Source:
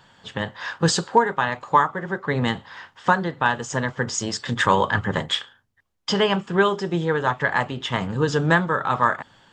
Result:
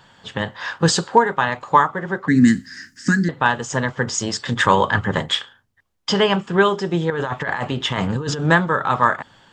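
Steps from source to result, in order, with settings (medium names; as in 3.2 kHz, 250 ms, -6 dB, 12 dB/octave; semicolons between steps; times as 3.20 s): 2.28–3.29 s: FFT filter 130 Hz 0 dB, 270 Hz +13 dB, 560 Hz -24 dB, 950 Hz -30 dB, 1.7 kHz +3 dB, 3.4 kHz -14 dB, 4.9 kHz +13 dB; 7.10–8.45 s: compressor with a negative ratio -26 dBFS, ratio -1; trim +3 dB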